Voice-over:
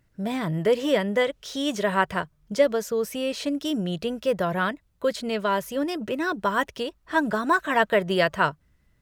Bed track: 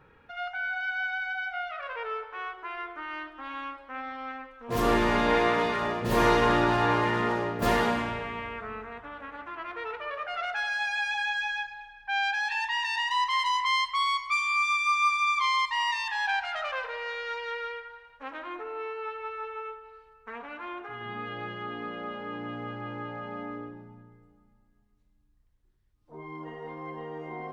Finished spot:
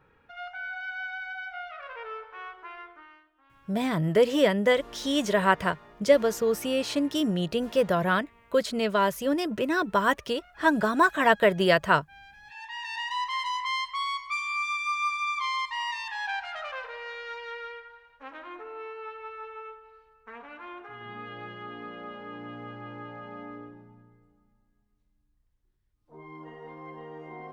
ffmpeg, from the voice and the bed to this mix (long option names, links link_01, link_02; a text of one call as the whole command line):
ffmpeg -i stem1.wav -i stem2.wav -filter_complex "[0:a]adelay=3500,volume=0.5dB[link_01];[1:a]volume=15dB,afade=type=out:start_time=2.65:duration=0.57:silence=0.112202,afade=type=in:start_time=12.43:duration=0.6:silence=0.105925[link_02];[link_01][link_02]amix=inputs=2:normalize=0" out.wav